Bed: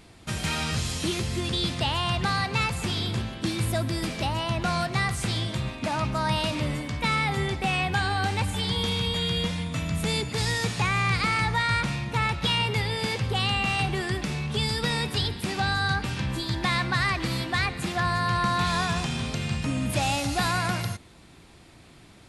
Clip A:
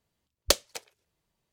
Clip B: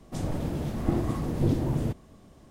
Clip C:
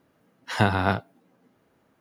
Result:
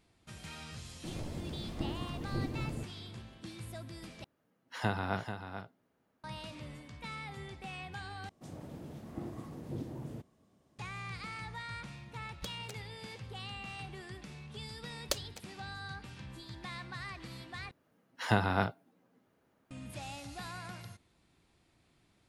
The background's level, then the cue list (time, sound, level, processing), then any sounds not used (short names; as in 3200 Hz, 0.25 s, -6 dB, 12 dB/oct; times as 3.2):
bed -18.5 dB
0.92 add B -11.5 dB
4.24 replace with C -11.5 dB + echo 0.438 s -9 dB
8.29 replace with B -14.5 dB + HPF 98 Hz
11.94 add A -4 dB + compressor, threshold -38 dBFS
14.61 add A -11.5 dB
17.71 replace with C -7 dB